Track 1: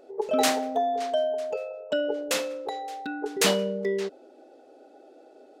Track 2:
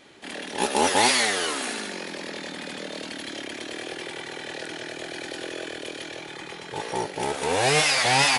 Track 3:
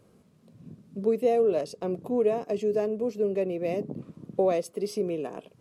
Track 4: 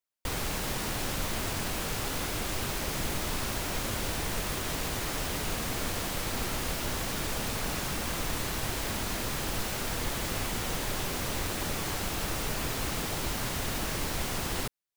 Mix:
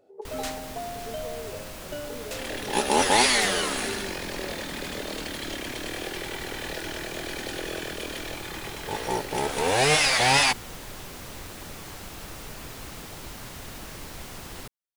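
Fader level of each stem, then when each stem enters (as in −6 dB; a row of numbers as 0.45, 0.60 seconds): −10.5, 0.0, −18.0, −7.5 decibels; 0.00, 2.15, 0.00, 0.00 seconds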